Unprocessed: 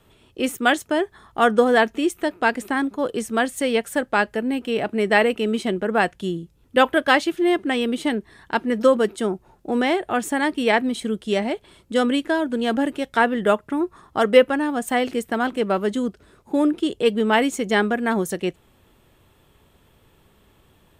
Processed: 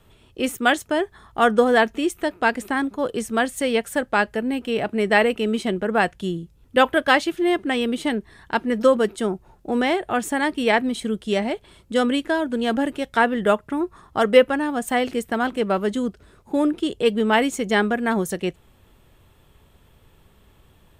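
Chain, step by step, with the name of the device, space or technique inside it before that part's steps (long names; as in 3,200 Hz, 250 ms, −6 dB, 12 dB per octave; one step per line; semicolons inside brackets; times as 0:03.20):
low shelf boost with a cut just above (low-shelf EQ 83 Hz +7.5 dB; parametric band 310 Hz −2 dB)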